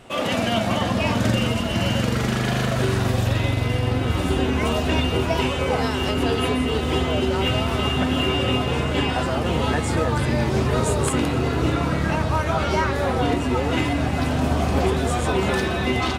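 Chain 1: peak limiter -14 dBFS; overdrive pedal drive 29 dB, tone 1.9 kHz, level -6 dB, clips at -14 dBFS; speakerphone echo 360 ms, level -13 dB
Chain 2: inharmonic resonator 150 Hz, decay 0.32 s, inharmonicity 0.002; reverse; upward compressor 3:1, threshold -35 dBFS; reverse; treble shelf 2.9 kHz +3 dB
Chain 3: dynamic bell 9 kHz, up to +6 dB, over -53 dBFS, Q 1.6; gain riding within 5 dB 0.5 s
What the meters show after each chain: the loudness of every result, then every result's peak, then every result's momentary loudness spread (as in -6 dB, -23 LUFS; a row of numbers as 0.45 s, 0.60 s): -20.5 LUFS, -33.5 LUFS, -21.5 LUFS; -13.5 dBFS, -18.0 dBFS, -7.5 dBFS; 1 LU, 3 LU, 1 LU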